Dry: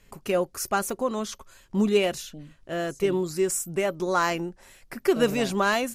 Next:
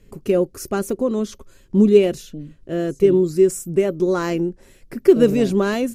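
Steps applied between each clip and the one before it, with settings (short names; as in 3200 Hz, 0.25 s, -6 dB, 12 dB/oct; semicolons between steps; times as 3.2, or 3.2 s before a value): resonant low shelf 570 Hz +10 dB, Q 1.5; gain -2 dB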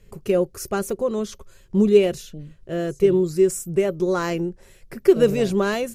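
bell 270 Hz -13 dB 0.46 oct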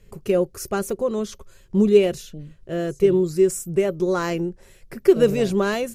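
nothing audible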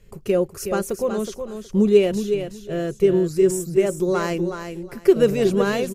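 feedback echo 0.369 s, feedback 19%, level -8 dB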